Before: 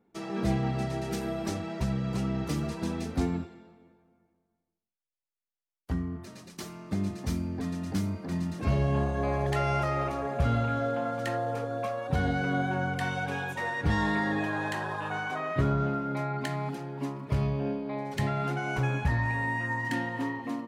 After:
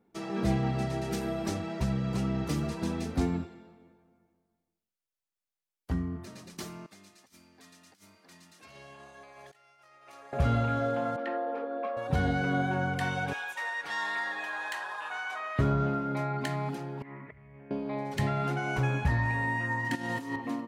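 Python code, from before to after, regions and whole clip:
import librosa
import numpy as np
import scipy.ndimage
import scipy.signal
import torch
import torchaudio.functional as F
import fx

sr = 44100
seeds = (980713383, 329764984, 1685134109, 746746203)

y = fx.chain(x, sr, fx.differentiator(),
    fx.over_compress(threshold_db=-51.0, ratio=-0.5),
    fx.lowpass(hz=3100.0, slope=6), at=(6.86, 10.33))
y = fx.chain(y, sr, fx.steep_highpass(hz=240.0, slope=36),
    fx.air_absorb(metres=380.0), at=(11.16, 11.97))
y = fx.chain(y, sr, fx.highpass(hz=1000.0, slope=12),
    fx.clip_hard(threshold_db=-25.0), at=(13.33, 15.59))
y = fx.chain(y, sr, fx.over_compress(threshold_db=-37.0, ratio=-1.0),
    fx.ladder_lowpass(hz=2100.0, resonance_pct=85), at=(17.02, 17.71))
y = fx.chain(y, sr, fx.highpass(hz=130.0, slope=12),
    fx.bass_treble(bass_db=3, treble_db=13),
    fx.over_compress(threshold_db=-34.0, ratio=-0.5), at=(19.95, 20.36))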